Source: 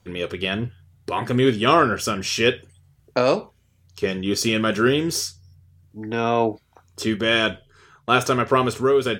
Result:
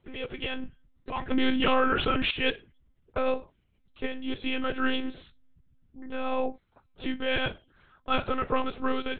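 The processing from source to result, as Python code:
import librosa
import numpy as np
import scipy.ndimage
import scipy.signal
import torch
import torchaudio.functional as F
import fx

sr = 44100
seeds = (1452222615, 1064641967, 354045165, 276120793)

y = fx.lpc_monotone(x, sr, seeds[0], pitch_hz=260.0, order=10)
y = fx.env_flatten(y, sr, amount_pct=70, at=(1.31, 2.31))
y = y * librosa.db_to_amplitude(-8.0)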